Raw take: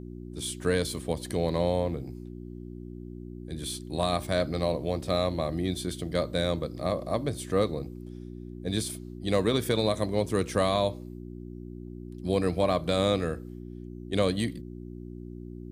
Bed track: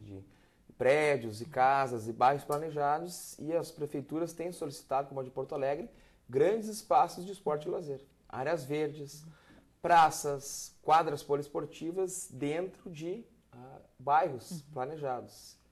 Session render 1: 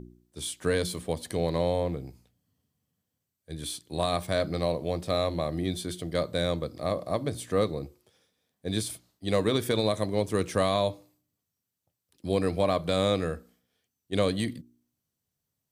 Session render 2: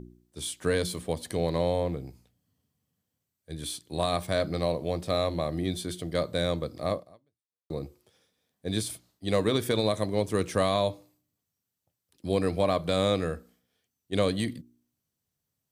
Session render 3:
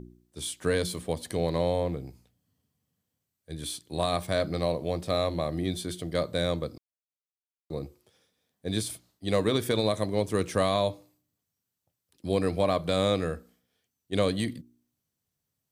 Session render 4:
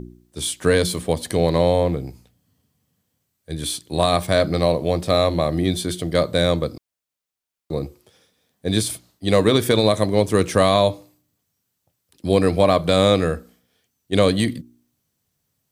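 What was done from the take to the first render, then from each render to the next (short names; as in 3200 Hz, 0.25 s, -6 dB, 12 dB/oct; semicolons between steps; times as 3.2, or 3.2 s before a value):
de-hum 60 Hz, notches 6
6.94–7.7 fade out exponential
6.78–7.74 fade in exponential
gain +9.5 dB; limiter -3 dBFS, peak gain reduction 1 dB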